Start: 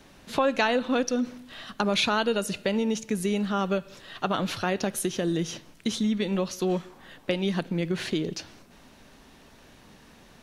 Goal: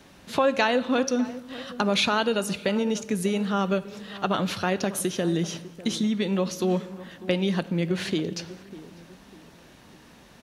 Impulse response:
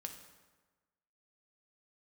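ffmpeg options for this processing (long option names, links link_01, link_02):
-filter_complex "[0:a]highpass=42,asplit=2[link_01][link_02];[link_02]adelay=598,lowpass=frequency=1100:poles=1,volume=-15.5dB,asplit=2[link_03][link_04];[link_04]adelay=598,lowpass=frequency=1100:poles=1,volume=0.39,asplit=2[link_05][link_06];[link_06]adelay=598,lowpass=frequency=1100:poles=1,volume=0.39[link_07];[link_01][link_03][link_05][link_07]amix=inputs=4:normalize=0,asplit=2[link_08][link_09];[1:a]atrim=start_sample=2205[link_10];[link_09][link_10]afir=irnorm=-1:irlink=0,volume=-6dB[link_11];[link_08][link_11]amix=inputs=2:normalize=0,volume=-1dB"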